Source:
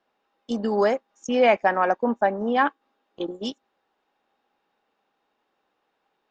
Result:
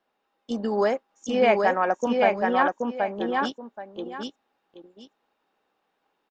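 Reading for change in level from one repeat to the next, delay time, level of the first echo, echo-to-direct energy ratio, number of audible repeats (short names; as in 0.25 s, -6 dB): -12.5 dB, 0.777 s, -3.0 dB, -3.0 dB, 2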